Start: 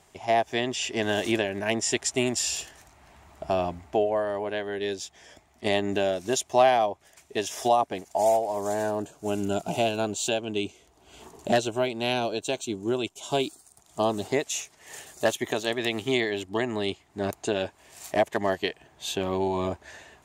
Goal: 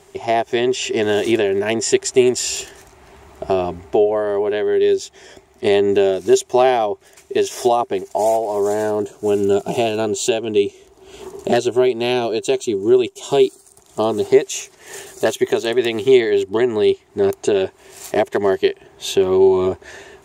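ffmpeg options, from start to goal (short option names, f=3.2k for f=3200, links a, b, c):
-filter_complex "[0:a]equalizer=f=390:t=o:w=0.26:g=14.5,asplit=2[a][b];[b]acompressor=threshold=-28dB:ratio=6,volume=-0.5dB[c];[a][c]amix=inputs=2:normalize=0,volume=2dB"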